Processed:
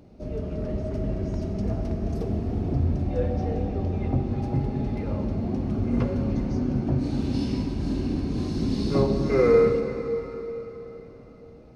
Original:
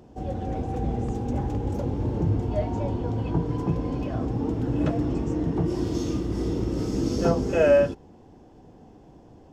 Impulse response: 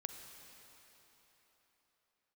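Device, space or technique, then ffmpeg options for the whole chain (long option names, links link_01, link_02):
slowed and reverbed: -filter_complex "[0:a]asetrate=35721,aresample=44100[link_01];[1:a]atrim=start_sample=2205[link_02];[link_01][link_02]afir=irnorm=-1:irlink=0,volume=2.5dB"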